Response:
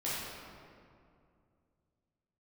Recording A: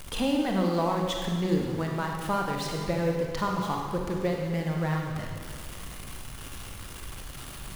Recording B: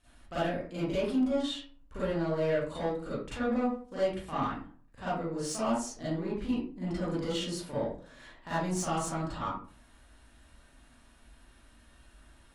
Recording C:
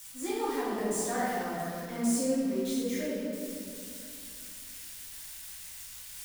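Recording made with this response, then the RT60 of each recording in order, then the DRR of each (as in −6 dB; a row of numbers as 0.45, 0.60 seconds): C; 1.8, 0.45, 2.4 seconds; 0.5, −12.0, −10.0 decibels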